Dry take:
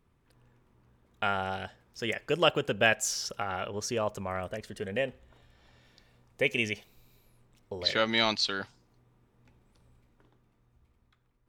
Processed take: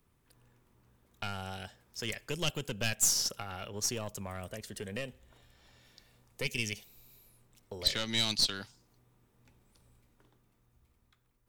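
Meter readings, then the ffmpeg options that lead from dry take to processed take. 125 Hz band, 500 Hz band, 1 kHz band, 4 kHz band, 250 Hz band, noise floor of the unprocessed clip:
−1.0 dB, −11.0 dB, −11.5 dB, −1.0 dB, −5.5 dB, −70 dBFS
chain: -filter_complex "[0:a]crystalizer=i=2:c=0,aeval=exprs='(tanh(6.31*val(0)+0.55)-tanh(0.55))/6.31':channel_layout=same,acrossover=split=250|3000[link_01][link_02][link_03];[link_02]acompressor=threshold=-43dB:ratio=2.5[link_04];[link_01][link_04][link_03]amix=inputs=3:normalize=0"

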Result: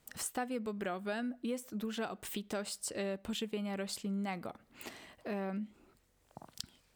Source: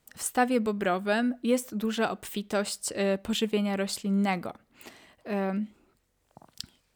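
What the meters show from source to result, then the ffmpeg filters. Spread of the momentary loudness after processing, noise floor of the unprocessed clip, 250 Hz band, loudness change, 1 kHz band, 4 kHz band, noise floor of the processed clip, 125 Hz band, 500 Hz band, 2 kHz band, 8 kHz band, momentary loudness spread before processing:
11 LU, −72 dBFS, −10.0 dB, −11.0 dB, −11.5 dB, −8.5 dB, −71 dBFS, −10.0 dB, −10.5 dB, −11.0 dB, −7.0 dB, 14 LU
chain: -af "acompressor=threshold=-40dB:ratio=3,volume=1dB"

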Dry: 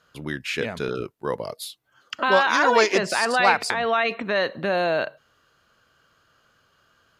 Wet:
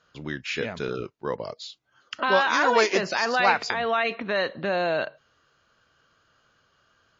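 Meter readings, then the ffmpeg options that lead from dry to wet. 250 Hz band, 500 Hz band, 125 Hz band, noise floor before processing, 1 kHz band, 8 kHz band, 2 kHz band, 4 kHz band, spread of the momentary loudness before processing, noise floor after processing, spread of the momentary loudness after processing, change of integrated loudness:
−2.5 dB, −2.5 dB, −2.5 dB, −65 dBFS, −2.5 dB, −5.0 dB, −2.5 dB, −2.0 dB, 15 LU, −67 dBFS, 15 LU, −2.5 dB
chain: -af "volume=-2dB" -ar 16000 -c:a libmp3lame -b:a 32k

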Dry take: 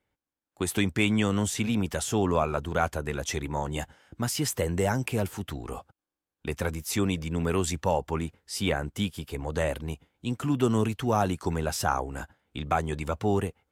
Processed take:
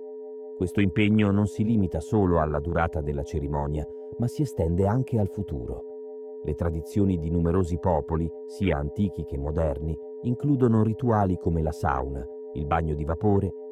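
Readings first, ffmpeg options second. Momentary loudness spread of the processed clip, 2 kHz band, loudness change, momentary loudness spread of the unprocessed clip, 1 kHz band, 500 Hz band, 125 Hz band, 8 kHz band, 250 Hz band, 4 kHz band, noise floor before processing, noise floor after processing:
11 LU, −3.5 dB, +2.5 dB, 11 LU, +0.5 dB, +3.0 dB, +5.0 dB, below −15 dB, +4.0 dB, −10.0 dB, below −85 dBFS, −39 dBFS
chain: -af "aeval=exprs='val(0)+0.0141*sin(2*PI*430*n/s)':channel_layout=same,afwtdn=0.0282,lowshelf=frequency=360:gain=5.5"

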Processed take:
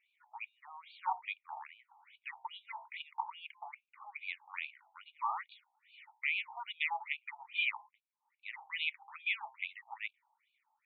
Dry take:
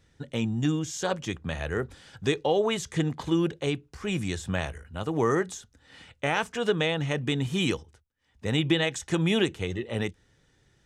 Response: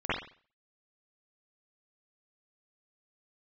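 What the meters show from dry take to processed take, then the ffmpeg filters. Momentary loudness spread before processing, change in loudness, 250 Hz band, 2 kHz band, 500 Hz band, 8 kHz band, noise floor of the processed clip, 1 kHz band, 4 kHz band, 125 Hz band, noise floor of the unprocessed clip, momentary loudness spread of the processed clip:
8 LU, −11.0 dB, below −40 dB, −5.0 dB, −37.5 dB, below −40 dB, −85 dBFS, −5.5 dB, −11.5 dB, below −40 dB, −66 dBFS, 18 LU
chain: -filter_complex "[0:a]asplit=3[link_01][link_02][link_03];[link_01]bandpass=frequency=300:width_type=q:width=8,volume=0dB[link_04];[link_02]bandpass=frequency=870:width_type=q:width=8,volume=-6dB[link_05];[link_03]bandpass=frequency=2240:width_type=q:width=8,volume=-9dB[link_06];[link_04][link_05][link_06]amix=inputs=3:normalize=0,bandreject=frequency=61:width_type=h:width=4,bandreject=frequency=122:width_type=h:width=4,bandreject=frequency=183:width_type=h:width=4,bandreject=frequency=244:width_type=h:width=4,bandreject=frequency=305:width_type=h:width=4,bandreject=frequency=366:width_type=h:width=4,bandreject=frequency=427:width_type=h:width=4,bandreject=frequency=488:width_type=h:width=4,bandreject=frequency=549:width_type=h:width=4,bandreject=frequency=610:width_type=h:width=4,bandreject=frequency=671:width_type=h:width=4,bandreject=frequency=732:width_type=h:width=4,bandreject=frequency=793:width_type=h:width=4,bandreject=frequency=854:width_type=h:width=4,bandreject=frequency=915:width_type=h:width=4,bandreject=frequency=976:width_type=h:width=4,bandreject=frequency=1037:width_type=h:width=4,afftfilt=real='re*between(b*sr/1024,890*pow(3300/890,0.5+0.5*sin(2*PI*2.4*pts/sr))/1.41,890*pow(3300/890,0.5+0.5*sin(2*PI*2.4*pts/sr))*1.41)':imag='im*between(b*sr/1024,890*pow(3300/890,0.5+0.5*sin(2*PI*2.4*pts/sr))/1.41,890*pow(3300/890,0.5+0.5*sin(2*PI*2.4*pts/sr))*1.41)':win_size=1024:overlap=0.75,volume=14dB"

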